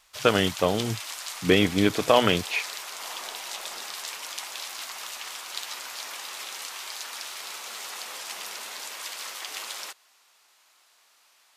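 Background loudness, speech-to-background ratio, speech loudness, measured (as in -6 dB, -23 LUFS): -35.0 LUFS, 11.5 dB, -23.5 LUFS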